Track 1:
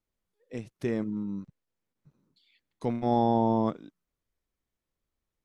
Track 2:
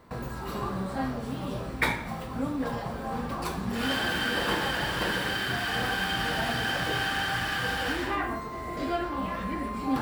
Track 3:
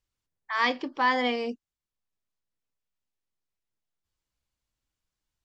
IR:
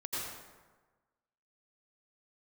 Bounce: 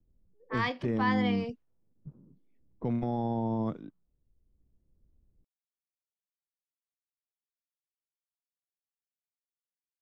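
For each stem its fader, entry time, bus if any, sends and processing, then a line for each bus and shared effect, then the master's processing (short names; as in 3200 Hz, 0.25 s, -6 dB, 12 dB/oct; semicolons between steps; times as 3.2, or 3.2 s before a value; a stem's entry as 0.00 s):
-2.0 dB, 0.00 s, bus A, no send, three-band squash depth 40%
off
-6.0 dB, 0.00 s, no bus, no send, dry
bus A: 0.0 dB, low shelf 200 Hz +10.5 dB; limiter -22 dBFS, peak gain reduction 8 dB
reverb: off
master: low-pass opened by the level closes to 360 Hz, open at -29 dBFS; high shelf 5800 Hz -8 dB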